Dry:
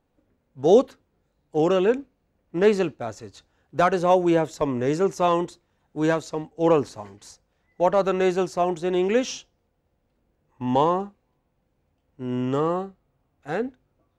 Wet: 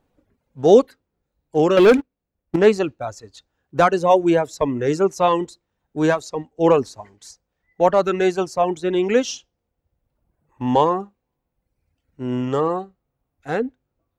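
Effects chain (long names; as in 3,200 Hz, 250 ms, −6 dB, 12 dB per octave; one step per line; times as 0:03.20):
reverb reduction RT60 1.3 s
0:01.77–0:02.56: leveller curve on the samples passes 3
level +4.5 dB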